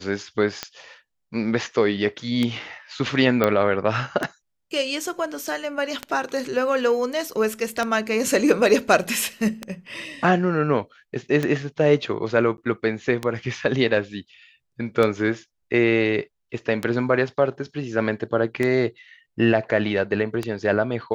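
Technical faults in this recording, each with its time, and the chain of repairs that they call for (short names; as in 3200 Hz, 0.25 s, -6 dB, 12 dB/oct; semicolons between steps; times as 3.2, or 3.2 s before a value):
tick 33 1/3 rpm -10 dBFS
3.44 pop -7 dBFS
12.57–12.58 gap 11 ms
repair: de-click; interpolate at 12.57, 11 ms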